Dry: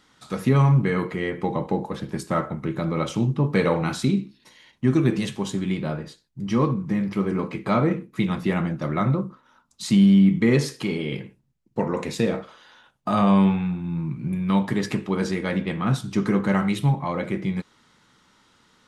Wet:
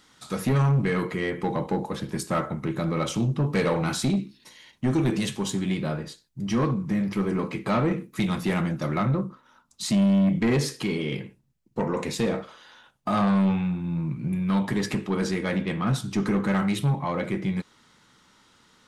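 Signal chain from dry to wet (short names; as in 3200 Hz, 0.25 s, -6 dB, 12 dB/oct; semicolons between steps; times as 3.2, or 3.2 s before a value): high shelf 4400 Hz +6.5 dB, from 7.98 s +11.5 dB, from 8.98 s +3 dB; soft clip -17 dBFS, distortion -12 dB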